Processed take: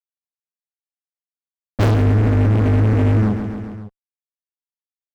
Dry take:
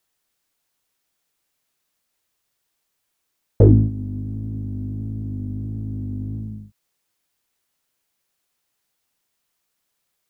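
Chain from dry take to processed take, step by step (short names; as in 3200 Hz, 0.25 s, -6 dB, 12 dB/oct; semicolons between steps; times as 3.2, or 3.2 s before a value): LPF 1000 Hz 24 dB/oct; notch 540 Hz, Q 12; upward compressor, threshold -31 dBFS; time stretch by phase-locked vocoder 0.5×; fuzz box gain 35 dB, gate -44 dBFS; feedback echo 0.137 s, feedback 47%, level -14 dB; fast leveller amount 50%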